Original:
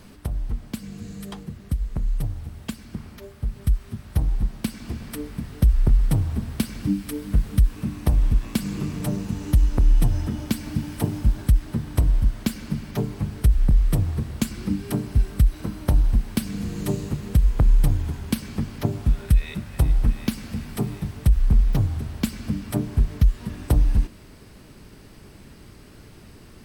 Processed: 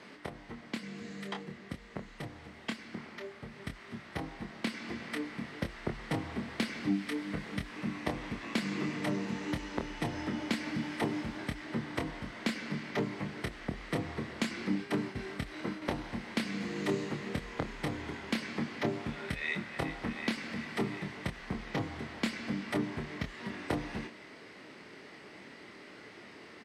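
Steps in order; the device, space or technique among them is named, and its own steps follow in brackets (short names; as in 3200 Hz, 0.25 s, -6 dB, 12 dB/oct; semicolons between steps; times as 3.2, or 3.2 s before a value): 14.75–15.82 expander -29 dBFS; intercom (BPF 330–4400 Hz; bell 2000 Hz +9 dB 0.28 oct; soft clip -21.5 dBFS, distortion -16 dB; doubler 26 ms -6 dB)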